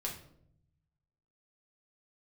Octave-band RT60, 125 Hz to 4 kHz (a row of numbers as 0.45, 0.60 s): 1.6, 1.1, 0.80, 0.60, 0.45, 0.45 s